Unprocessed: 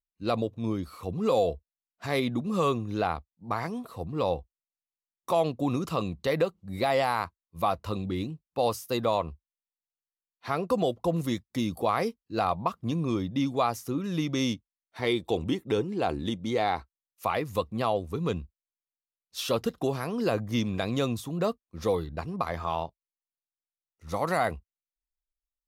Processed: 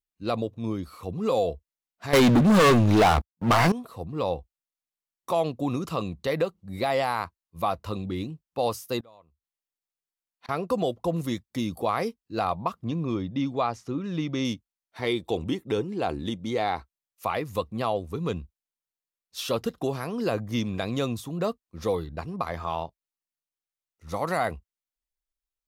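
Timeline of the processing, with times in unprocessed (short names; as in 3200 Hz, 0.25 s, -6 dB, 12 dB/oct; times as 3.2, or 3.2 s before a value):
2.13–3.72 sample leveller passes 5
9–10.49 flipped gate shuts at -32 dBFS, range -27 dB
12.84–14.45 air absorption 100 m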